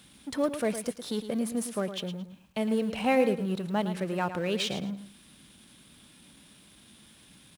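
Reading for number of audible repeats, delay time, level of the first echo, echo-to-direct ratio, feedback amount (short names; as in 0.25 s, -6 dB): 2, 0.11 s, -10.5 dB, -10.0 dB, 24%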